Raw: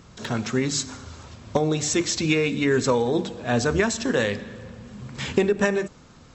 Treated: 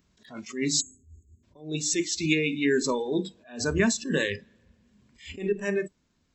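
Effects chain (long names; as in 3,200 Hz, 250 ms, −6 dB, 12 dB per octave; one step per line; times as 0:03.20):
thirty-one-band graphic EQ 125 Hz −12 dB, 500 Hz −8 dB, 800 Hz −8 dB, 1,250 Hz −9 dB
noise reduction from a noise print of the clip's start 19 dB
0:00.81–0:01.43: time-frequency box erased 450–6,400 Hz
0:03.79–0:04.45: parametric band 150 Hz +12 dB 0.9 octaves
speech leveller within 3 dB 2 s
level that may rise only so fast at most 140 dB per second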